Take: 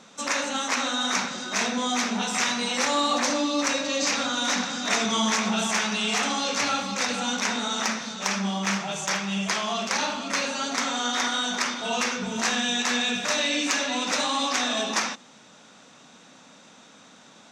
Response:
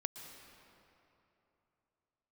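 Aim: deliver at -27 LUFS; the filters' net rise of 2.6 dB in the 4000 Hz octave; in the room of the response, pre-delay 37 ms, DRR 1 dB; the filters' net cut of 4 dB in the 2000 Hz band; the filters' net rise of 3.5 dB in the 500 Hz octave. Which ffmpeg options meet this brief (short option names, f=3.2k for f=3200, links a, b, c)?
-filter_complex "[0:a]equalizer=f=500:t=o:g=4.5,equalizer=f=2k:t=o:g=-7,equalizer=f=4k:t=o:g=5,asplit=2[a][b];[1:a]atrim=start_sample=2205,adelay=37[c];[b][c]afir=irnorm=-1:irlink=0,volume=0dB[d];[a][d]amix=inputs=2:normalize=0,volume=-5.5dB"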